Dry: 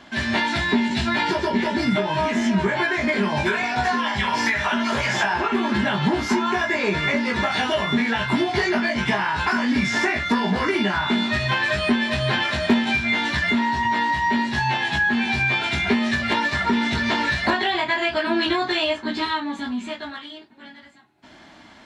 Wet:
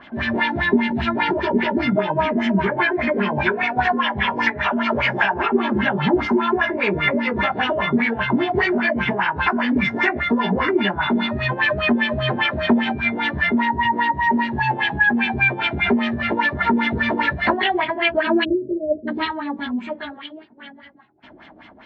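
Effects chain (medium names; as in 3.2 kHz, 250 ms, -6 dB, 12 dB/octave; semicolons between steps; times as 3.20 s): LFO low-pass sine 5 Hz 380–3100 Hz; spectral selection erased 18.44–19.08 s, 660–8200 Hz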